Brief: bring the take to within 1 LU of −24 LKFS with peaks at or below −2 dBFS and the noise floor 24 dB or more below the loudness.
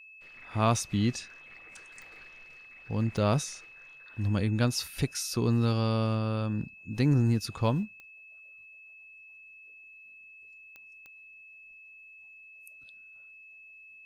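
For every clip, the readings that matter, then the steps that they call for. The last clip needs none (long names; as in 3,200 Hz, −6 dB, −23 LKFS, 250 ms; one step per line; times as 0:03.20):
number of clicks 6; interfering tone 2,600 Hz; level of the tone −49 dBFS; integrated loudness −29.0 LKFS; sample peak −12.0 dBFS; target loudness −24.0 LKFS
→ click removal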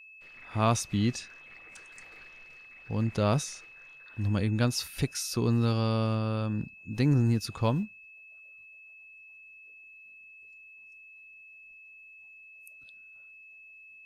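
number of clicks 0; interfering tone 2,600 Hz; level of the tone −49 dBFS
→ notch filter 2,600 Hz, Q 30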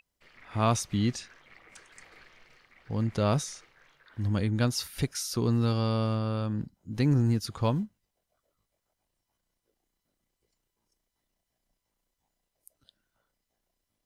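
interfering tone none found; integrated loudness −29.0 LKFS; sample peak −12.0 dBFS; target loudness −24.0 LKFS
→ level +5 dB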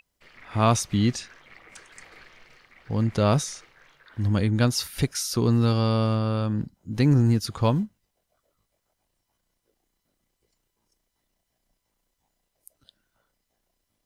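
integrated loudness −24.0 LKFS; sample peak −7.0 dBFS; background noise floor −78 dBFS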